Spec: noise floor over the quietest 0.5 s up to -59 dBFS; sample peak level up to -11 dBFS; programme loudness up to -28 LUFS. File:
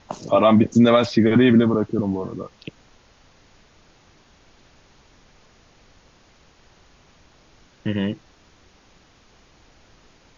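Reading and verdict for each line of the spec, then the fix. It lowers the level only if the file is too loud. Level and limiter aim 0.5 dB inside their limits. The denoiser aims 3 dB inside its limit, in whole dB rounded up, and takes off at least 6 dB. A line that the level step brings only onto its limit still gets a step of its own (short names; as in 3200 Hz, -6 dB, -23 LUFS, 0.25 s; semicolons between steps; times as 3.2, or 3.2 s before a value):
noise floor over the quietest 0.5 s -55 dBFS: fail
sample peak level -5.0 dBFS: fail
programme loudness -18.5 LUFS: fail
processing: gain -10 dB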